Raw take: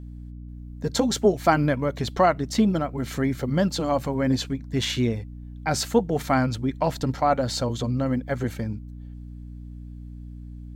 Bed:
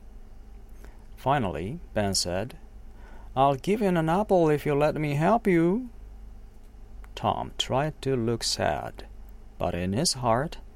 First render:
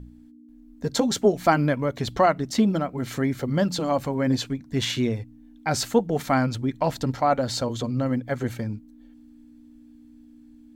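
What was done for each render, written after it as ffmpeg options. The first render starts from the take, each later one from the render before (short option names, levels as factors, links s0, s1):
-af "bandreject=f=60:t=h:w=4,bandreject=f=120:t=h:w=4,bandreject=f=180:t=h:w=4"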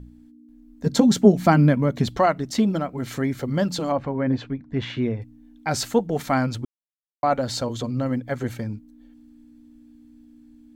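-filter_complex "[0:a]asettb=1/sr,asplit=3[s0][s1][s2];[s0]atrim=end=0.864[s3];[s1]atrim=start=0.86:end=2.08,asetpts=PTS-STARTPTS,afade=t=in:d=0.004:c=qsin,afade=t=out:st=1.216:d=0.004:c=qsin,equalizer=f=190:t=o:w=1.1:g=12[s4];[s2]atrim=start=2.076[s5];[s3][s4]acrossfade=d=0.004:c1=hsin:c2=qsin[s6];[s6][s5]acrossfade=d=0.004:c1=qsin:c2=hsin,asettb=1/sr,asplit=3[s7][s8][s9];[s7]atrim=end=3.924[s10];[s8]atrim=start=3.92:end=5.22,asetpts=PTS-STARTPTS,afade=t=in:d=0.004:c=qsin,afade=t=out:st=1.296:d=0.004:c=qsin,lowpass=2200[s11];[s9]atrim=start=5.216[s12];[s10][s11]acrossfade=d=0.004:c1=hsin:c2=qsin[s13];[s13][s12]acrossfade=d=0.004:c1=qsin:c2=hsin,asplit=3[s14][s15][s16];[s14]atrim=end=6.65,asetpts=PTS-STARTPTS,afade=t=out:st=6.646:d=0.004:c=hsin[s17];[s15]atrim=start=6.65:end=7.23,asetpts=PTS-STARTPTS,volume=0[s18];[s16]atrim=start=7.23,asetpts=PTS-STARTPTS,afade=t=in:d=0.004:c=hsin[s19];[s17][s18][s19]concat=n=3:v=0:a=1"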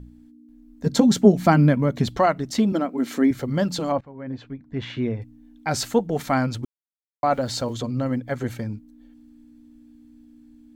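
-filter_complex "[0:a]asettb=1/sr,asplit=3[s0][s1][s2];[s0]atrim=end=2.724[s3];[s1]atrim=start=2.72:end=3.31,asetpts=PTS-STARTPTS,afade=t=in:d=0.004:c=qsin,afade=t=out:st=0.586:d=0.004:c=qsin,lowshelf=f=170:t=q:w=3:g=-13[s4];[s2]atrim=start=3.306[s5];[s3][s4]acrossfade=d=0.004:c1=hsin:c2=qsin[s6];[s6][s5]acrossfade=d=0.004:c1=qsin:c2=hsin,asettb=1/sr,asplit=3[s7][s8][s9];[s7]atrim=end=6.634[s10];[s8]atrim=start=6.63:end=7.74,asetpts=PTS-STARTPTS,afade=t=in:d=0.004:c=qsin,afade=t=out:st=1.106:d=0.004:c=qsin,aeval=exprs='val(0)*gte(abs(val(0)),0.00447)':c=same[s11];[s9]atrim=start=7.736[s12];[s10][s11]acrossfade=d=0.004:c1=hsin:c2=qsin[s13];[s13][s12]acrossfade=d=0.004:c1=qsin:c2=hsin,asplit=2[s14][s15];[s14]atrim=end=4.01,asetpts=PTS-STARTPTS,afade=t=out:st=4.006:d=0.004:c=hsin:silence=0.1[s16];[s15]atrim=start=4.01,asetpts=PTS-STARTPTS,afade=t=in:d=1.18:silence=0.1[s17];[s16][s17]concat=n=2:v=0:a=1"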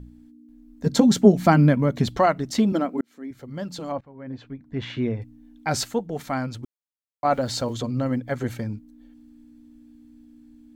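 -filter_complex "[0:a]asplit=4[s0][s1][s2][s3];[s0]atrim=end=3.01,asetpts=PTS-STARTPTS,afade=t=out:st=3.006:d=0.004:c=hsin[s4];[s1]atrim=start=3.01:end=5.842,asetpts=PTS-STARTPTS,afade=t=in:d=1.84[s5];[s2]atrim=start=5.838:end=7.252,asetpts=PTS-STARTPTS,volume=0.531[s6];[s3]atrim=start=7.248[s7];[s4][s5]concat=n=2:v=0:a=1[s8];[s8][s6]acrossfade=d=0.004:c1=hsin:c2=hsin[s9];[s9][s7]acrossfade=d=0.004:c1=hsin:c2=hsin"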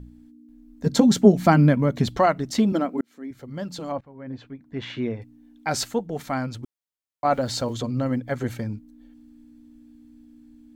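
-filter_complex "[0:a]asettb=1/sr,asplit=3[s0][s1][s2];[s0]atrim=end=4.474[s3];[s1]atrim=start=4.47:end=5.81,asetpts=PTS-STARTPTS,afade=t=in:d=0.004:c=qsin,afade=t=out:st=1.336:d=0.004:c=qsin,lowshelf=f=130:g=-9.5[s4];[s2]atrim=start=5.806[s5];[s3][s4]acrossfade=d=0.004:c1=hsin:c2=qsin[s6];[s6][s5]acrossfade=d=0.004:c1=qsin:c2=hsin"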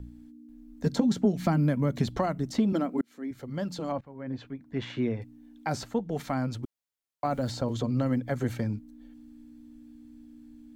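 -filter_complex "[0:a]acrossover=split=270|1300|6200[s0][s1][s2][s3];[s0]acompressor=threshold=0.0562:ratio=4[s4];[s1]acompressor=threshold=0.0316:ratio=4[s5];[s2]acompressor=threshold=0.00708:ratio=4[s6];[s3]acompressor=threshold=0.00224:ratio=4[s7];[s4][s5][s6][s7]amix=inputs=4:normalize=0"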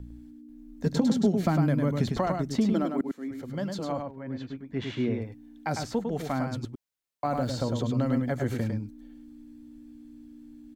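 -af "aecho=1:1:103:0.562"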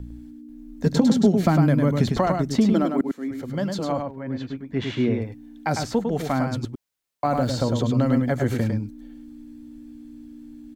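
-af "volume=2"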